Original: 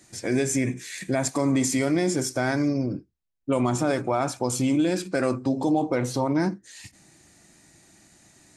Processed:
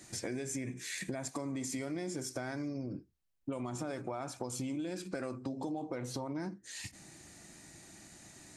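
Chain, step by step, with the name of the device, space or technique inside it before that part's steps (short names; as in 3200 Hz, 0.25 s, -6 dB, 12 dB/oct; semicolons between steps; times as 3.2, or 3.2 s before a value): serial compression, peaks first (compressor 4:1, threshold -34 dBFS, peak gain reduction 13 dB; compressor 1.5:1, threshold -43 dBFS, peak gain reduction 5 dB); gain +1 dB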